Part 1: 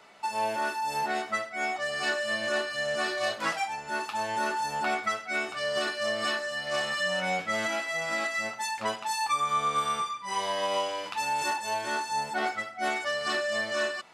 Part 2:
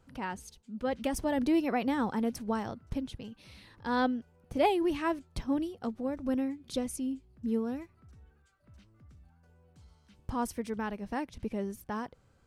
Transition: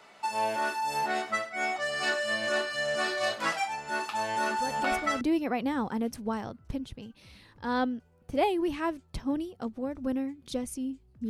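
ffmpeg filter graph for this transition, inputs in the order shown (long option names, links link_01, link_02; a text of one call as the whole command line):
ffmpeg -i cue0.wav -i cue1.wav -filter_complex "[1:a]asplit=2[link_01][link_02];[0:a]apad=whole_dur=11.29,atrim=end=11.29,atrim=end=5.212[link_03];[link_02]atrim=start=1.428:end=7.51[link_04];[link_01]atrim=start=0.67:end=1.43,asetpts=PTS-STARTPTS,volume=-6dB,afade=type=in:duration=0.004:curve=hsin,afade=type=out:start_time=0.756:duration=0.004:curve=hsin,adelay=196245S[link_05];[link_03][link_04]acrossfade=duration=0.004:curve1=hsin:curve2=hsin[link_06];[link_06][link_05]amix=inputs=2:normalize=0" out.wav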